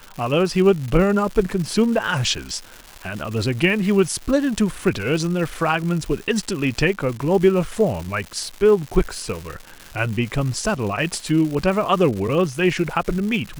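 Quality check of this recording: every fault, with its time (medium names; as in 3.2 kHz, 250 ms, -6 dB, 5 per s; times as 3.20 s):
crackle 320 per s -28 dBFS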